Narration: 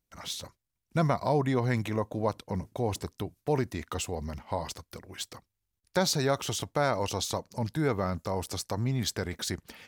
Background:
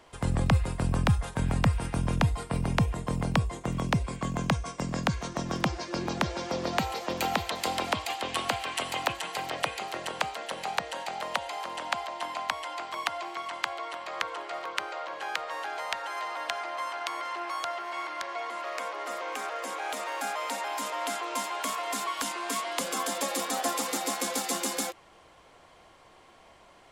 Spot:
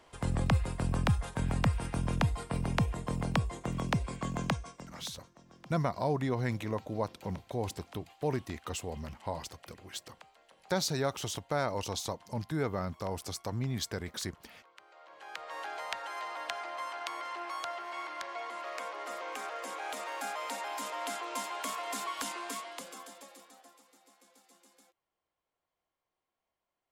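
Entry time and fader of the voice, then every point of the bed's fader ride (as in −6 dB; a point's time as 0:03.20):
4.75 s, −4.5 dB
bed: 0:04.48 −4 dB
0:05.17 −26 dB
0:14.75 −26 dB
0:15.59 −5 dB
0:22.38 −5 dB
0:23.86 −33 dB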